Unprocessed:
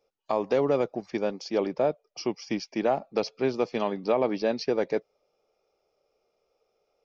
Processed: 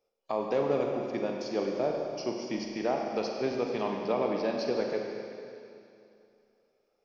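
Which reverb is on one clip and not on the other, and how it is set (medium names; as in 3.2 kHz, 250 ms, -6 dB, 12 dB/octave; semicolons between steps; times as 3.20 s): Schroeder reverb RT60 2.6 s, combs from 33 ms, DRR 1 dB; trim -5.5 dB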